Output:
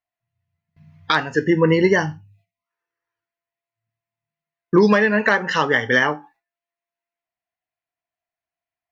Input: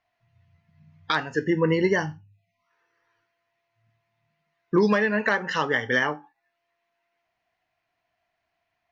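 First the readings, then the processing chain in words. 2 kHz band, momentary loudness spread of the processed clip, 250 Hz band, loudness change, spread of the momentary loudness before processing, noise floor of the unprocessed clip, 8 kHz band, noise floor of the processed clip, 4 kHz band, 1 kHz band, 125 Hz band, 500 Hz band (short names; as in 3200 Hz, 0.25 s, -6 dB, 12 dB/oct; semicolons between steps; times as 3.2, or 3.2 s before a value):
+6.0 dB, 6 LU, +6.0 dB, +6.0 dB, 6 LU, -79 dBFS, n/a, under -85 dBFS, +6.0 dB, +6.0 dB, +6.0 dB, +6.0 dB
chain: gate with hold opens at -52 dBFS; gain +6 dB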